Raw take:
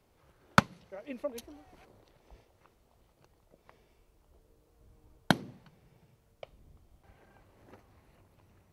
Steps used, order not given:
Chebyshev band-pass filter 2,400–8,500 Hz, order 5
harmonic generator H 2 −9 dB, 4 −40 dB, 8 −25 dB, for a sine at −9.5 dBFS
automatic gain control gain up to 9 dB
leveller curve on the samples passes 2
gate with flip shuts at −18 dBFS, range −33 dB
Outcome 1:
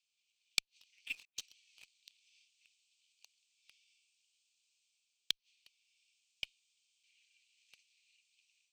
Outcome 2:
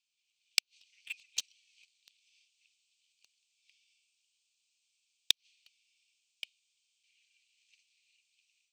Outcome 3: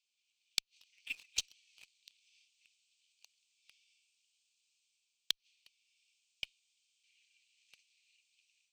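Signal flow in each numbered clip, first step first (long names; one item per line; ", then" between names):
automatic gain control, then gate with flip, then Chebyshev band-pass filter, then leveller curve on the samples, then harmonic generator
harmonic generator, then Chebyshev band-pass filter, then gate with flip, then automatic gain control, then leveller curve on the samples
automatic gain control, then Chebyshev band-pass filter, then gate with flip, then leveller curve on the samples, then harmonic generator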